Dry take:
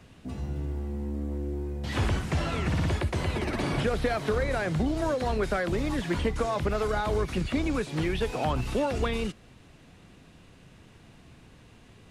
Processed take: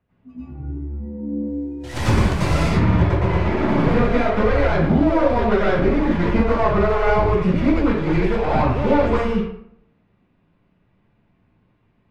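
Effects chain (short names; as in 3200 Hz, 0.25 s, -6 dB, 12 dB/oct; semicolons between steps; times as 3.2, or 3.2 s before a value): tracing distortion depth 0.3 ms; spectral noise reduction 20 dB; LPF 2000 Hz 12 dB/oct, from 1.36 s 8300 Hz, from 2.66 s 2400 Hz; reverb RT60 0.65 s, pre-delay 87 ms, DRR -10 dB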